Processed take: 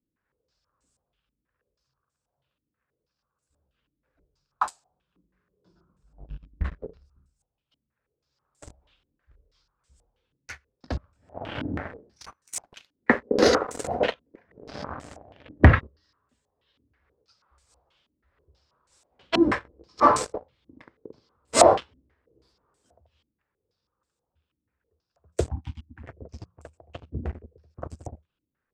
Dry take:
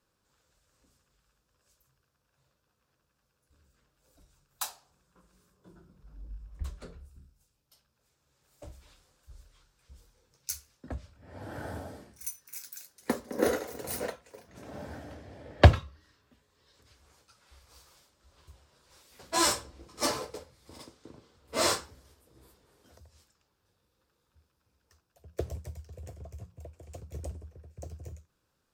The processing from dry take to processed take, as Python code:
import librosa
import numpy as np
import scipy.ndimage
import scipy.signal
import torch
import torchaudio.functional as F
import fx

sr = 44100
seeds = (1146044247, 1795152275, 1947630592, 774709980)

y = fx.leveller(x, sr, passes=3)
y = fx.spec_box(y, sr, start_s=25.5, length_s=0.52, low_hz=340.0, high_hz=760.0, gain_db=-29)
y = fx.filter_held_lowpass(y, sr, hz=6.2, low_hz=280.0, high_hz=8000.0)
y = F.gain(torch.from_numpy(y), -2.5).numpy()